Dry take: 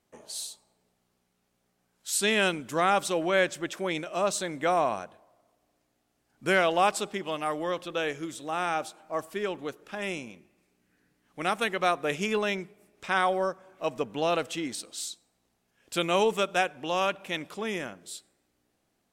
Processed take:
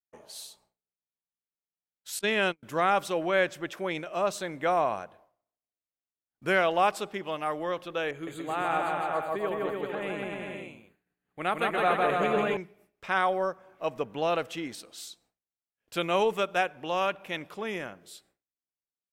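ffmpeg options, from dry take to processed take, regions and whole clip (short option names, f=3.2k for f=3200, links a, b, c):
-filter_complex "[0:a]asettb=1/sr,asplit=3[a][b][c];[a]atrim=end=2.194[d];[b]atrim=start=2.19:end=2.63,asetpts=PTS-STARTPTS,afade=t=in:d=0.004:c=qsin,afade=t=out:st=0.436:d=0.004:c=qsin,agate=range=-47dB:threshold=-29dB:ratio=16:release=100:detection=peak,highshelf=f=10k:g=-7,acompressor=mode=upward:threshold=-32dB:ratio=2.5:attack=3.2:release=140:knee=2.83:detection=peak[e];[c]atrim=start=2.626[f];[d][e]acrossfade=d=0.004:c1=hsin:c2=qsin[g];[g][f]acrossfade=d=0.004:c1=qsin:c2=hsin,asettb=1/sr,asplit=3[h][i][j];[h]atrim=end=8.114[k];[i]atrim=start=8.11:end=12.57,asetpts=PTS-STARTPTS,afade=t=in:d=0.004:c=qsin,afade=t=out:st=4.456:d=0.004:c=qsin,asuperstop=centerf=5500:order=8:qfactor=3.4,aecho=1:1:160|288|390.4|472.3|537.9:0.794|0.631|0.501|0.398|0.316,atrim=end_sample=196686,adynamicequalizer=threshold=0.01:dfrequency=1800:dqfactor=0.7:tfrequency=1800:tqfactor=0.7:attack=5:release=100:ratio=0.375:range=3.5:mode=cutabove:tftype=highshelf[l];[j]atrim=start=12.566[m];[k][l]acrossfade=d=0.004:c1=hsin:c2=qsin[n];[n][m]acrossfade=d=0.004:c1=qsin:c2=hsin,agate=range=-33dB:threshold=-54dB:ratio=3:detection=peak,equalizer=f=250:t=o:w=1:g=-4,equalizer=f=4k:t=o:w=1:g=-3,equalizer=f=8k:t=o:w=1:g=-9"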